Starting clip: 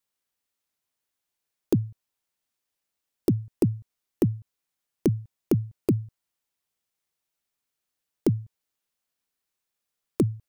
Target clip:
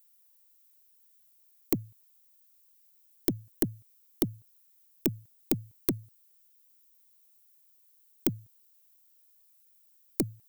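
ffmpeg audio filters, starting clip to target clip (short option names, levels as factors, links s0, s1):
-af "aemphasis=mode=production:type=riaa,aeval=exprs='(tanh(5.01*val(0)+0.4)-tanh(0.4))/5.01':c=same"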